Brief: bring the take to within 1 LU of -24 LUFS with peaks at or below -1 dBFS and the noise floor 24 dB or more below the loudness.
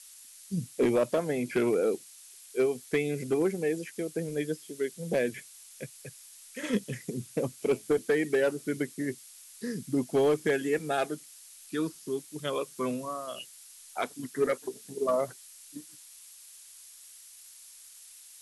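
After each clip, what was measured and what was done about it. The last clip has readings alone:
clipped 0.4%; flat tops at -19.0 dBFS; noise floor -52 dBFS; noise floor target -55 dBFS; loudness -31.0 LUFS; peak -19.0 dBFS; loudness target -24.0 LUFS
-> clip repair -19 dBFS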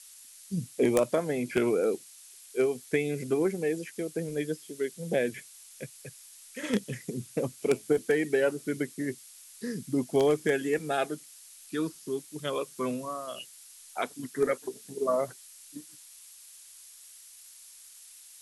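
clipped 0.0%; noise floor -52 dBFS; noise floor target -55 dBFS
-> denoiser 6 dB, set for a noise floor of -52 dBFS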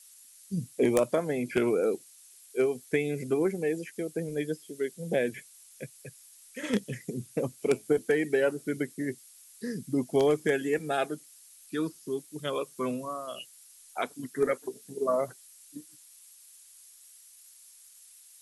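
noise floor -55 dBFS; loudness -30.5 LUFS; peak -10.0 dBFS; loudness target -24.0 LUFS
-> gain +6.5 dB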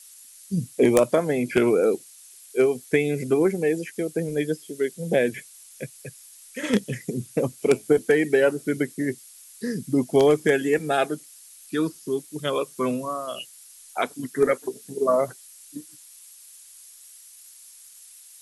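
loudness -24.0 LUFS; peak -3.5 dBFS; noise floor -49 dBFS

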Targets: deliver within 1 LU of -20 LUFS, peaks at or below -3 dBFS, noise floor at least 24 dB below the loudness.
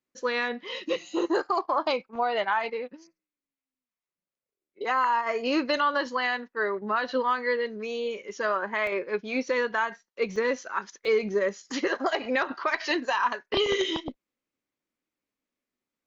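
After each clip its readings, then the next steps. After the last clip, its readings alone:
dropouts 3; longest dropout 1.9 ms; loudness -28.0 LUFS; peak -13.0 dBFS; loudness target -20.0 LUFS
-> interpolate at 8.87/10.36/11.05, 1.9 ms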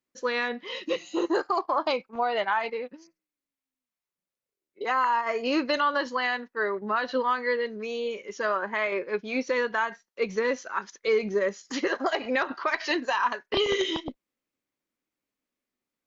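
dropouts 0; loudness -28.0 LUFS; peak -13.0 dBFS; loudness target -20.0 LUFS
-> gain +8 dB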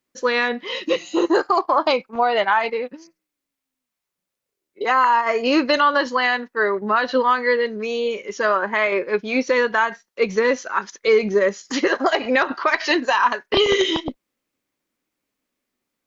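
loudness -20.0 LUFS; peak -5.0 dBFS; noise floor -84 dBFS

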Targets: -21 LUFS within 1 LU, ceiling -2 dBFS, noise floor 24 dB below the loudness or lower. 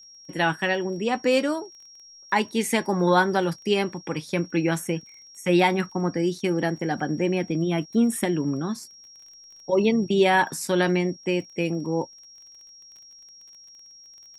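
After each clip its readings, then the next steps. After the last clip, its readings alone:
ticks 24/s; steady tone 5600 Hz; tone level -46 dBFS; loudness -24.5 LUFS; peak -6.5 dBFS; loudness target -21.0 LUFS
-> de-click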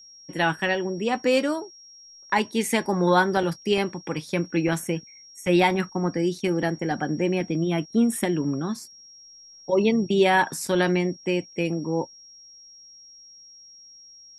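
ticks 0.070/s; steady tone 5600 Hz; tone level -46 dBFS
-> notch 5600 Hz, Q 30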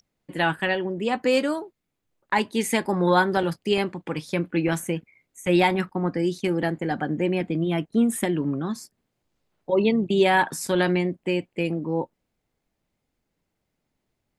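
steady tone none; loudness -24.5 LUFS; peak -6.5 dBFS; loudness target -21.0 LUFS
-> gain +3.5 dB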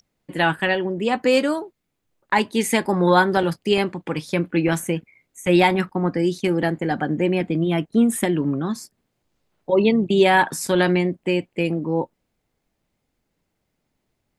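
loudness -21.0 LUFS; peak -3.0 dBFS; noise floor -76 dBFS

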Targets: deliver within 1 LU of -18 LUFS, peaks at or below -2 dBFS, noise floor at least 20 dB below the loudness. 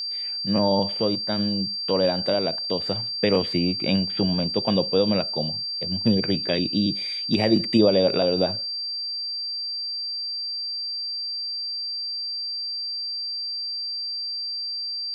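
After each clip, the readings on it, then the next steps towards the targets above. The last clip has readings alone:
steady tone 4700 Hz; tone level -27 dBFS; loudness -24.0 LUFS; peak -6.0 dBFS; loudness target -18.0 LUFS
-> notch 4700 Hz, Q 30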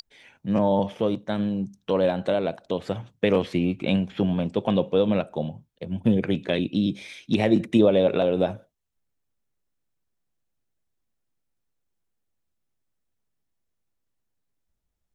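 steady tone none; loudness -24.5 LUFS; peak -6.5 dBFS; loudness target -18.0 LUFS
-> gain +6.5 dB; limiter -2 dBFS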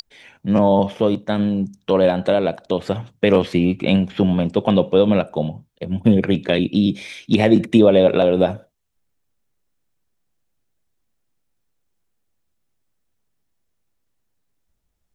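loudness -18.0 LUFS; peak -2.0 dBFS; noise floor -71 dBFS

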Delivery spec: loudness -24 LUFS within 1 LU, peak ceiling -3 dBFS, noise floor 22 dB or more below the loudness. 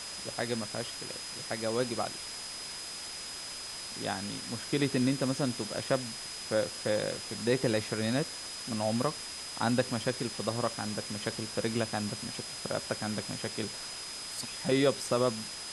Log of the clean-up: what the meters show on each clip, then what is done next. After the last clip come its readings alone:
steady tone 5000 Hz; tone level -42 dBFS; noise floor -41 dBFS; noise floor target -55 dBFS; loudness -33.0 LUFS; peak -13.5 dBFS; loudness target -24.0 LUFS
-> notch 5000 Hz, Q 30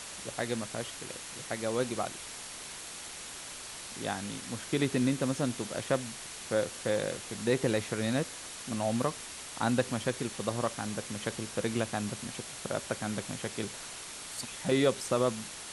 steady tone none; noise floor -44 dBFS; noise floor target -56 dBFS
-> denoiser 12 dB, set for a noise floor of -44 dBFS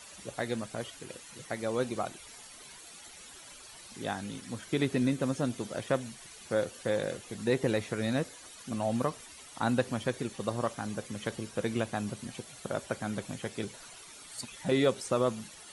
noise floor -50 dBFS; noise floor target -56 dBFS
-> denoiser 6 dB, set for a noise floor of -50 dBFS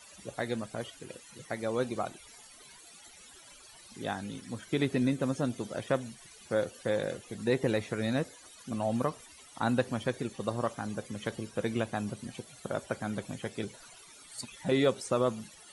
noise floor -54 dBFS; noise floor target -56 dBFS
-> denoiser 6 dB, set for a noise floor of -54 dBFS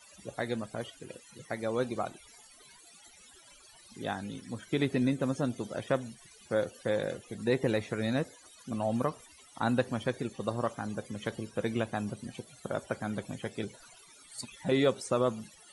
noise floor -57 dBFS; loudness -33.5 LUFS; peak -14.0 dBFS; loudness target -24.0 LUFS
-> gain +9.5 dB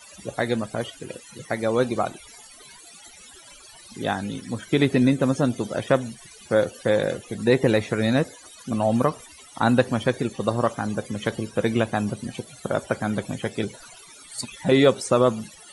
loudness -24.0 LUFS; peak -4.5 dBFS; noise floor -47 dBFS

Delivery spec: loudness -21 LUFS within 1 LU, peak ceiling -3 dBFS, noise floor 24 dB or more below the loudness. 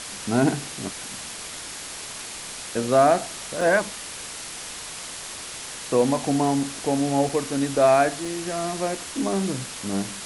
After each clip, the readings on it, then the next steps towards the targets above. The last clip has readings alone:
dropouts 3; longest dropout 3.1 ms; noise floor -36 dBFS; noise floor target -49 dBFS; loudness -25.0 LUFS; peak -6.5 dBFS; loudness target -21.0 LUFS
-> interpolate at 3.61/7.29/8.25, 3.1 ms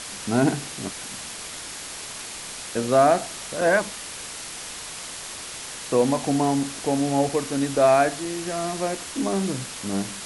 dropouts 0; noise floor -36 dBFS; noise floor target -49 dBFS
-> denoiser 13 dB, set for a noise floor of -36 dBFS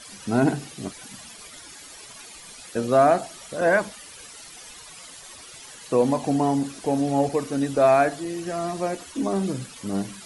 noise floor -44 dBFS; noise floor target -48 dBFS
-> denoiser 6 dB, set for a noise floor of -44 dBFS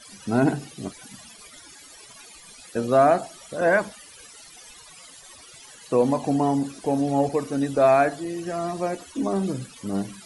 noise floor -47 dBFS; noise floor target -48 dBFS
-> denoiser 6 dB, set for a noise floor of -47 dBFS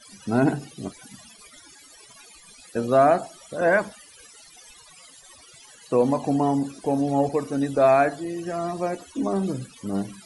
noise floor -50 dBFS; loudness -23.5 LUFS; peak -7.0 dBFS; loudness target -21.0 LUFS
-> gain +2.5 dB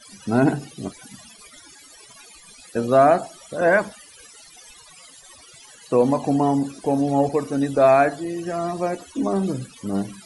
loudness -21.0 LUFS; peak -4.5 dBFS; noise floor -48 dBFS

